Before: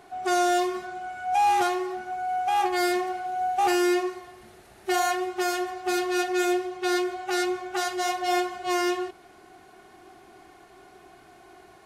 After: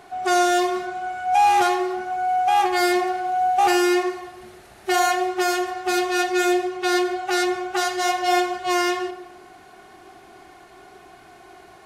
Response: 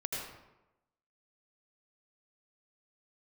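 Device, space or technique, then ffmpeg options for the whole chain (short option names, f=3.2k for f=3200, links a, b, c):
filtered reverb send: -filter_complex "[0:a]asplit=2[a][b];[b]highpass=f=290:w=0.5412,highpass=f=290:w=1.3066,lowpass=8.6k[c];[1:a]atrim=start_sample=2205[d];[c][d]afir=irnorm=-1:irlink=0,volume=-13dB[e];[a][e]amix=inputs=2:normalize=0,volume=4dB"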